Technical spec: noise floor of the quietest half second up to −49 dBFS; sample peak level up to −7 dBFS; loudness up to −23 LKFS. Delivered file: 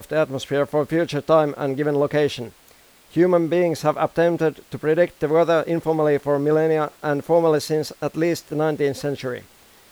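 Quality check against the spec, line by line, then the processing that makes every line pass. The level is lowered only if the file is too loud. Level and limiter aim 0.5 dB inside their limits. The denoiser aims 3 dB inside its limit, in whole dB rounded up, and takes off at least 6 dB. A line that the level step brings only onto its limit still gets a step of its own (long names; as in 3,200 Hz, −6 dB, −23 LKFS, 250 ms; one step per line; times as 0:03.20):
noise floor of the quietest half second −52 dBFS: in spec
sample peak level −5.5 dBFS: out of spec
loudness −21.0 LKFS: out of spec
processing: level −2.5 dB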